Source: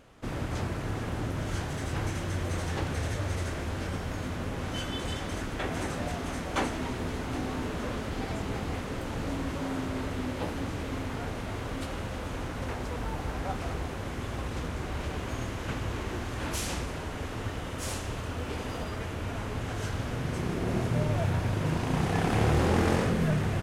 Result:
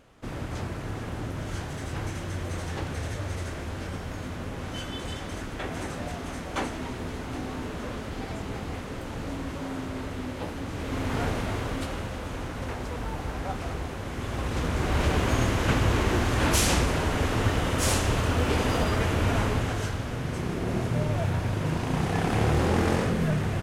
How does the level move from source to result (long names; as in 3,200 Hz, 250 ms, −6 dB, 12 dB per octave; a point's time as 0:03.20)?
0:10.65 −1 dB
0:11.21 +7.5 dB
0:12.17 +1 dB
0:14.07 +1 dB
0:15.04 +10 dB
0:19.41 +10 dB
0:20.00 +1 dB